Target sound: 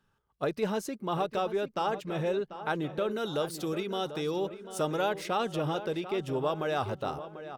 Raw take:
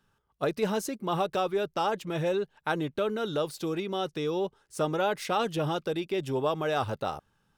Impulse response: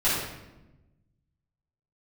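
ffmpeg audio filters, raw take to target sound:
-filter_complex "[0:a]asetnsamples=nb_out_samples=441:pad=0,asendcmd='3.11 highshelf g 5;5.09 highshelf g -2.5',highshelf=frequency=4600:gain=-4.5,asplit=2[link_01][link_02];[link_02]adelay=741,lowpass=frequency=2800:poles=1,volume=-12dB,asplit=2[link_03][link_04];[link_04]adelay=741,lowpass=frequency=2800:poles=1,volume=0.52,asplit=2[link_05][link_06];[link_06]adelay=741,lowpass=frequency=2800:poles=1,volume=0.52,asplit=2[link_07][link_08];[link_08]adelay=741,lowpass=frequency=2800:poles=1,volume=0.52,asplit=2[link_09][link_10];[link_10]adelay=741,lowpass=frequency=2800:poles=1,volume=0.52[link_11];[link_01][link_03][link_05][link_07][link_09][link_11]amix=inputs=6:normalize=0,volume=-2dB"

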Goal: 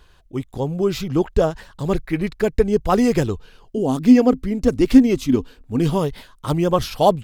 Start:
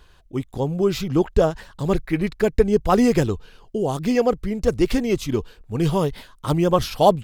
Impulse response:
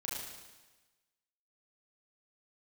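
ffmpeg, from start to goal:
-filter_complex "[0:a]asettb=1/sr,asplit=3[link_01][link_02][link_03];[link_01]atrim=end=3.774[link_04];[link_02]atrim=start=3.77:end=5.99,asetpts=PTS-STARTPTS,afade=type=in:duration=0.004:curve=qsin,afade=type=out:start_time=2.216:duration=0.004:curve=qsin,equalizer=frequency=260:width=5.6:gain=15[link_05];[link_03]atrim=start=5.986[link_06];[link_04][link_05]acrossfade=duration=0.004:curve1=hsin:curve2=qsin[link_07];[link_07][link_06]acrossfade=duration=0.004:curve1=qsin:curve2=hsin"

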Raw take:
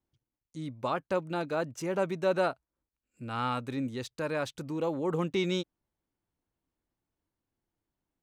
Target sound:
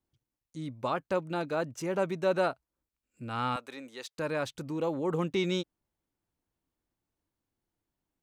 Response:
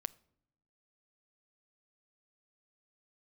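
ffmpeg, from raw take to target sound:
-filter_complex "[0:a]asettb=1/sr,asplit=3[link_01][link_02][link_03];[link_01]atrim=end=3.564[link_04];[link_02]atrim=start=3.56:end=4.18,asetpts=PTS-STARTPTS,afade=type=in:duration=0.004:curve=qsin,afade=type=out:start_time=0.616:duration=0.004:curve=qsin,highpass=570[link_05];[link_03]atrim=start=4.176[link_06];[link_04][link_05]acrossfade=duration=0.004:curve1=hsin:curve2=qsin[link_07];[link_07][link_06]acrossfade=duration=0.004:curve1=qsin:curve2=hsin"

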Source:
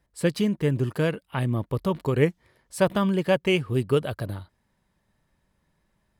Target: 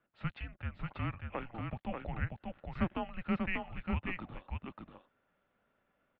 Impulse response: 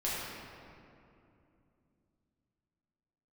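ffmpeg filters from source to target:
-filter_complex "[0:a]acompressor=threshold=-42dB:ratio=1.5,asplit=2[link_01][link_02];[link_02]aecho=0:1:589:0.631[link_03];[link_01][link_03]amix=inputs=2:normalize=0,highpass=frequency=440:width_type=q:width=0.5412,highpass=frequency=440:width_type=q:width=1.307,lowpass=frequency=3300:width_type=q:width=0.5176,lowpass=frequency=3300:width_type=q:width=0.7071,lowpass=frequency=3300:width_type=q:width=1.932,afreqshift=-360,volume=-1dB"

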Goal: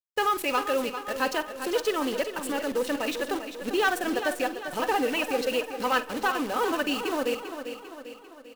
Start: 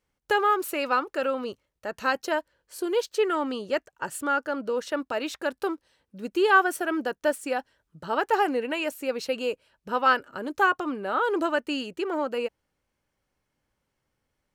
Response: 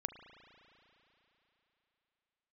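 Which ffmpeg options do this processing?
-filter_complex "[0:a]equalizer=frequency=2800:width_type=o:width=1.2:gain=5,bandreject=frequency=1400:width=5.9,aecho=1:1:4:0.35,asoftclip=type=tanh:threshold=-17dB,atempo=1.7,acrusher=bits=7:dc=4:mix=0:aa=0.000001,aecho=1:1:396|792|1188|1584|1980|2376:0.335|0.171|0.0871|0.0444|0.0227|0.0116,asplit=2[link_01][link_02];[1:a]atrim=start_sample=2205,adelay=49[link_03];[link_02][link_03]afir=irnorm=-1:irlink=0,volume=-12.5dB[link_04];[link_01][link_04]amix=inputs=2:normalize=0"

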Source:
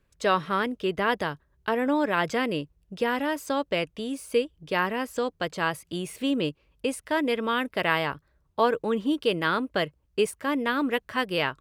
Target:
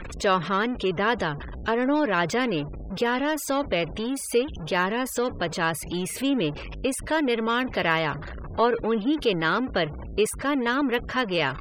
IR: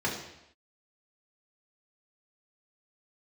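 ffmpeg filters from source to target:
-af "aeval=exprs='val(0)+0.5*0.0335*sgn(val(0))':channel_layout=same,afftfilt=real='re*gte(hypot(re,im),0.0126)':imag='im*gte(hypot(re,im),0.0126)':win_size=1024:overlap=0.75"

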